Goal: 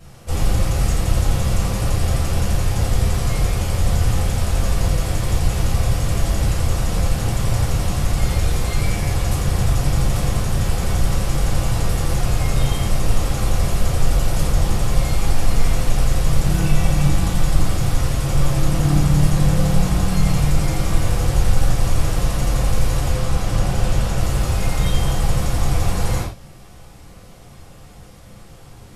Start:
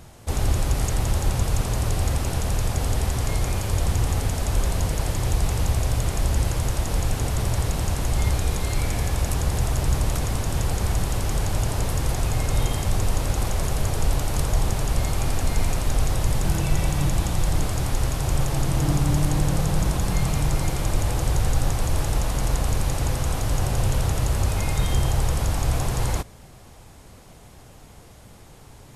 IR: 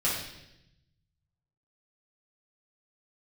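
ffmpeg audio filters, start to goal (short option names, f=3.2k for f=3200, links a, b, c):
-filter_complex "[0:a]asettb=1/sr,asplit=3[a][b][c];[a]atrim=end=23.094[d];[b]atrim=start=23.09:end=24.18,asetpts=PTS-STARTPTS,afade=t=in:d=0.004:c=qsin,afade=t=out:st=1.086:d=0.004:c=qsin,highshelf=f=11k:g=-7.5[e];[c]atrim=start=24.176[f];[d][e]acrossfade=d=0.004:c1=hsin:c2=qsin[g];[g][f]acrossfade=d=0.004:c1=qsin:c2=hsin[h];[1:a]atrim=start_sample=2205,afade=t=out:st=0.17:d=0.01,atrim=end_sample=7938[i];[h][i]afir=irnorm=-1:irlink=0,volume=-5.5dB"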